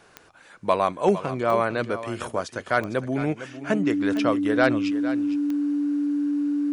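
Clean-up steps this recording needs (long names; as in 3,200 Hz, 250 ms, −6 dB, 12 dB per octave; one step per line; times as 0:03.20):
click removal
notch filter 290 Hz, Q 30
echo removal 457 ms −13 dB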